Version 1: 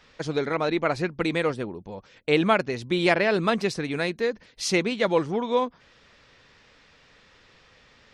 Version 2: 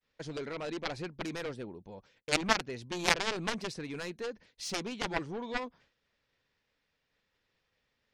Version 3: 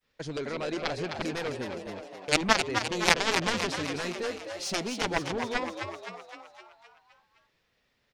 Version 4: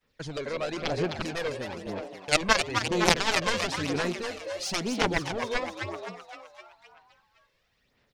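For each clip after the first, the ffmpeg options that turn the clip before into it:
ffmpeg -i in.wav -af "aeval=exprs='0.398*(cos(1*acos(clip(val(0)/0.398,-1,1)))-cos(1*PI/2))+0.178*(cos(3*acos(clip(val(0)/0.398,-1,1)))-cos(3*PI/2))':channel_layout=same,equalizer=frequency=1200:width_type=o:width=0.32:gain=-3.5,agate=range=-33dB:threshold=-56dB:ratio=3:detection=peak" out.wav
ffmpeg -i in.wav -filter_complex "[0:a]asplit=8[link_01][link_02][link_03][link_04][link_05][link_06][link_07][link_08];[link_02]adelay=258,afreqshift=89,volume=-6.5dB[link_09];[link_03]adelay=516,afreqshift=178,volume=-11.5dB[link_10];[link_04]adelay=774,afreqshift=267,volume=-16.6dB[link_11];[link_05]adelay=1032,afreqshift=356,volume=-21.6dB[link_12];[link_06]adelay=1290,afreqshift=445,volume=-26.6dB[link_13];[link_07]adelay=1548,afreqshift=534,volume=-31.7dB[link_14];[link_08]adelay=1806,afreqshift=623,volume=-36.7dB[link_15];[link_01][link_09][link_10][link_11][link_12][link_13][link_14][link_15]amix=inputs=8:normalize=0,volume=4.5dB" out.wav
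ffmpeg -i in.wav -af "aphaser=in_gain=1:out_gain=1:delay=1.9:decay=0.5:speed=1:type=sinusoidal" out.wav

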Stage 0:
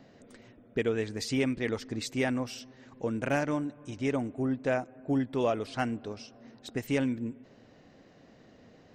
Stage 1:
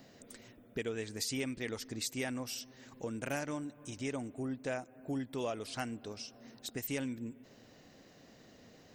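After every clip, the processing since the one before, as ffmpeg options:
ffmpeg -i in.wav -af "aemphasis=mode=production:type=75fm,acompressor=threshold=-43dB:ratio=1.5,volume=-2dB" out.wav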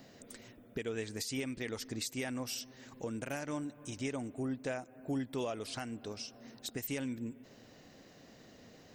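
ffmpeg -i in.wav -af "alimiter=level_in=4.5dB:limit=-24dB:level=0:latency=1:release=196,volume=-4.5dB,volume=1.5dB" out.wav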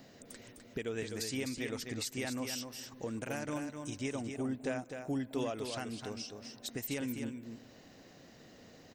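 ffmpeg -i in.wav -af "aecho=1:1:255:0.473" out.wav

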